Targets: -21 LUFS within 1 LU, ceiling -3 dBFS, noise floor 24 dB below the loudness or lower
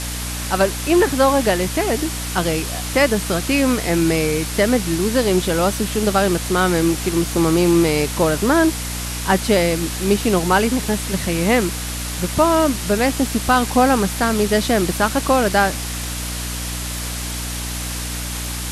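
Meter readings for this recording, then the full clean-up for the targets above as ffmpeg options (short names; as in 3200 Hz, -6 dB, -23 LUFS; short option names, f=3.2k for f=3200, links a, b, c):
hum 60 Hz; harmonics up to 300 Hz; hum level -26 dBFS; noise floor -26 dBFS; noise floor target -43 dBFS; loudness -18.5 LUFS; peak -3.0 dBFS; loudness target -21.0 LUFS
-> -af "bandreject=f=60:t=h:w=4,bandreject=f=120:t=h:w=4,bandreject=f=180:t=h:w=4,bandreject=f=240:t=h:w=4,bandreject=f=300:t=h:w=4"
-af "afftdn=nr=17:nf=-26"
-af "volume=-2.5dB"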